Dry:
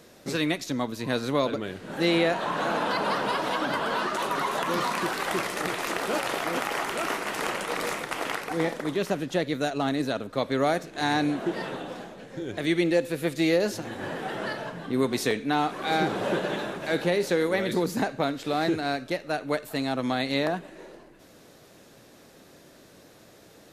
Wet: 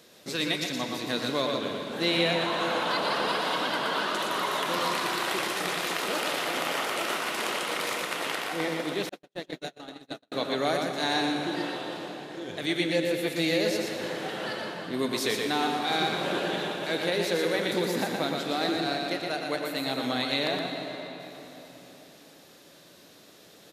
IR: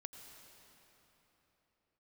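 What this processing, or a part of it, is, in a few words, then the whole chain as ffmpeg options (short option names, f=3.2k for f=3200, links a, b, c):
PA in a hall: -filter_complex "[0:a]highpass=f=170:p=1,equalizer=f=3.6k:t=o:w=1.1:g=6.5,aecho=1:1:119:0.596[a];[1:a]atrim=start_sample=2205[b];[a][b]afir=irnorm=-1:irlink=0,asettb=1/sr,asplit=3[c][d][e];[c]atrim=end=9.094[f];[d]atrim=start=9.09:end=10.32,asetpts=PTS-STARTPTS,afade=t=in:d=0.004:c=qsin,afade=t=out:st=1.226:d=0.004:c=qsin,agate=range=-54dB:threshold=-27dB:ratio=16:detection=peak[g];[e]atrim=start=10.316[h];[f][g]acrossfade=d=0.004:c1=hsin:c2=qsin[i];[i][h]acrossfade=d=0.004:c1=qsin:c2=hsin,highshelf=f=9k:g=5.5,volume=1.5dB"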